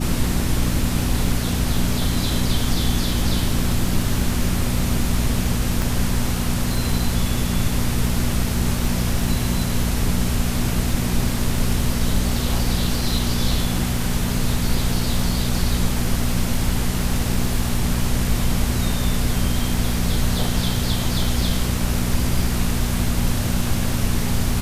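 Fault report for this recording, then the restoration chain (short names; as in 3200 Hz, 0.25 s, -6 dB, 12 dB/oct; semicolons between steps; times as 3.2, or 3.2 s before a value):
crackle 26/s -27 dBFS
hum 60 Hz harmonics 4 -24 dBFS
5.82 pop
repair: de-click; de-hum 60 Hz, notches 4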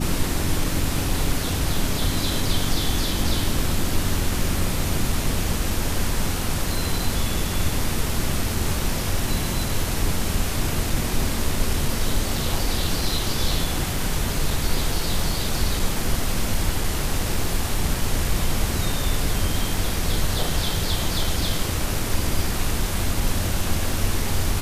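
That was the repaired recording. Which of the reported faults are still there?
5.82 pop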